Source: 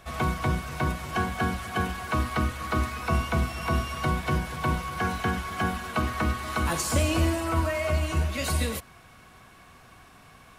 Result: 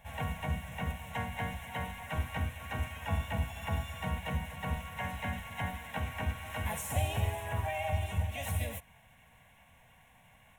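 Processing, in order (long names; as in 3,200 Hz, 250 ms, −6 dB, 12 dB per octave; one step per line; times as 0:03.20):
pitch-shifted copies added +4 semitones −1 dB, +7 semitones −18 dB
phaser with its sweep stopped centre 1,300 Hz, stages 6
level −8.5 dB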